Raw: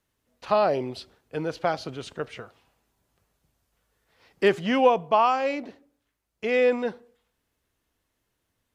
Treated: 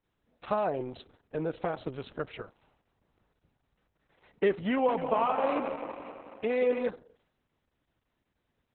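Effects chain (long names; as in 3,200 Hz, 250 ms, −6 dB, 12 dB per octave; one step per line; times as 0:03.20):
high-shelf EQ 2,400 Hz −10 dB
downward compressor 2 to 1, threshold −27 dBFS, peak gain reduction 7.5 dB
0:04.71–0:06.89: echo machine with several playback heads 88 ms, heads second and third, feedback 60%, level −11 dB
Opus 6 kbit/s 48,000 Hz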